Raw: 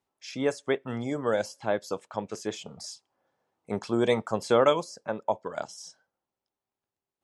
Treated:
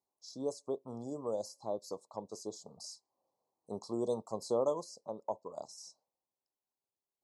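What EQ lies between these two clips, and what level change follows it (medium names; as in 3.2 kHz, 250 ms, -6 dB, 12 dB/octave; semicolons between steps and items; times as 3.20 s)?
Chebyshev band-stop 1.1–4.1 kHz, order 4; dynamic bell 1.1 kHz, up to -4 dB, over -37 dBFS, Q 0.7; bass shelf 270 Hz -7.5 dB; -6.0 dB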